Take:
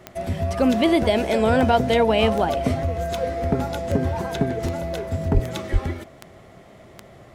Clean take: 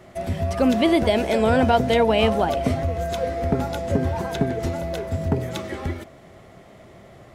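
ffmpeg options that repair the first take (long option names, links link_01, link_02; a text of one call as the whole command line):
ffmpeg -i in.wav -filter_complex "[0:a]adeclick=threshold=4,asplit=3[link_01][link_02][link_03];[link_01]afade=type=out:start_time=5.33:duration=0.02[link_04];[link_02]highpass=frequency=140:width=0.5412,highpass=frequency=140:width=1.3066,afade=type=in:start_time=5.33:duration=0.02,afade=type=out:start_time=5.45:duration=0.02[link_05];[link_03]afade=type=in:start_time=5.45:duration=0.02[link_06];[link_04][link_05][link_06]amix=inputs=3:normalize=0,asplit=3[link_07][link_08][link_09];[link_07]afade=type=out:start_time=5.72:duration=0.02[link_10];[link_08]highpass=frequency=140:width=0.5412,highpass=frequency=140:width=1.3066,afade=type=in:start_time=5.72:duration=0.02,afade=type=out:start_time=5.84:duration=0.02[link_11];[link_09]afade=type=in:start_time=5.84:duration=0.02[link_12];[link_10][link_11][link_12]amix=inputs=3:normalize=0" out.wav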